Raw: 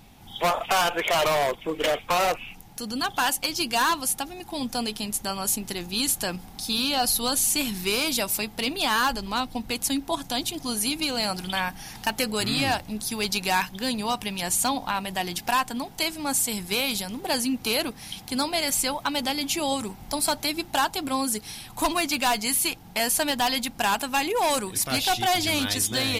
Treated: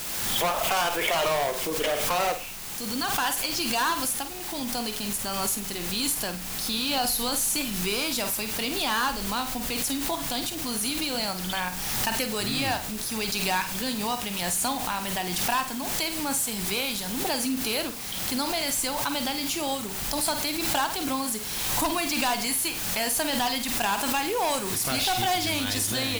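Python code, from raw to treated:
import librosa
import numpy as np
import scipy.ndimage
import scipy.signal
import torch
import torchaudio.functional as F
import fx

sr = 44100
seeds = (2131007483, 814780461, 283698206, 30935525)

y = fx.vibrato(x, sr, rate_hz=1.0, depth_cents=7.9)
y = fx.quant_dither(y, sr, seeds[0], bits=6, dither='triangular')
y = fx.room_flutter(y, sr, wall_m=8.5, rt60_s=0.3)
y = fx.pre_swell(y, sr, db_per_s=26.0)
y = F.gain(torch.from_numpy(y), -3.5).numpy()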